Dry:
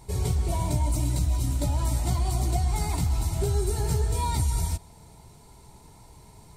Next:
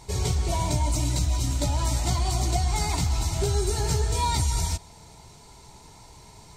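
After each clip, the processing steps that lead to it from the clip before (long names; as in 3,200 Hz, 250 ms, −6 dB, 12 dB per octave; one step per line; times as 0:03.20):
drawn EQ curve 200 Hz 0 dB, 6,600 Hz +9 dB, 10,000 Hz −2 dB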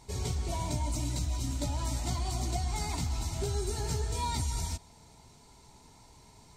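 parametric band 250 Hz +7 dB 0.31 octaves
level −8 dB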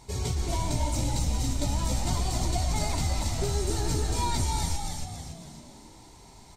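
echo with shifted repeats 278 ms, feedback 47%, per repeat −75 Hz, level −4 dB
level +3.5 dB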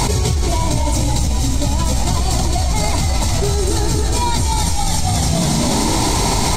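envelope flattener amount 100%
level +7.5 dB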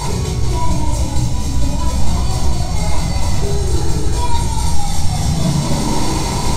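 rectangular room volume 1,000 cubic metres, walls furnished, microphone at 4.9 metres
level −9.5 dB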